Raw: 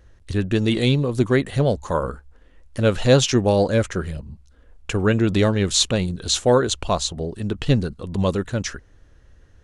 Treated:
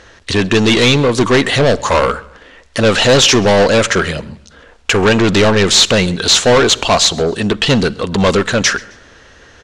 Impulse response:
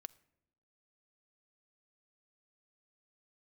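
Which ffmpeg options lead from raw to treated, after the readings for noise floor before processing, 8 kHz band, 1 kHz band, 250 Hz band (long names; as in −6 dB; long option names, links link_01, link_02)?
−52 dBFS, +11.0 dB, +11.5 dB, +7.0 dB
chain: -filter_complex "[0:a]asplit=2[link_01][link_02];[link_02]highpass=frequency=720:poles=1,volume=27dB,asoftclip=type=tanh:threshold=-4dB[link_03];[link_01][link_03]amix=inputs=2:normalize=0,lowpass=frequency=3900:poles=1,volume=-6dB,aecho=1:1:132|264:0.0631|0.0233,asplit=2[link_04][link_05];[1:a]atrim=start_sample=2205,lowpass=6600,highshelf=frequency=3900:gain=11[link_06];[link_05][link_06]afir=irnorm=-1:irlink=0,volume=17.5dB[link_07];[link_04][link_07]amix=inputs=2:normalize=0,volume=-12.5dB"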